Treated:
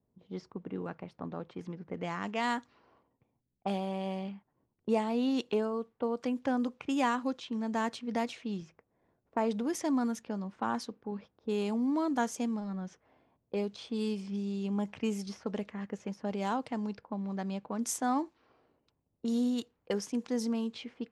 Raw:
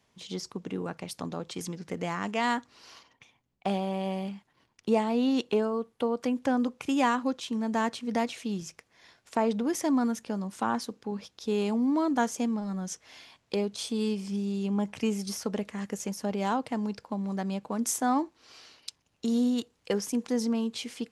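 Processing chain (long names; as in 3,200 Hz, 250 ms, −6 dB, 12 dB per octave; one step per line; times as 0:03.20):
low-pass that shuts in the quiet parts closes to 440 Hz, open at −25 dBFS
level −4 dB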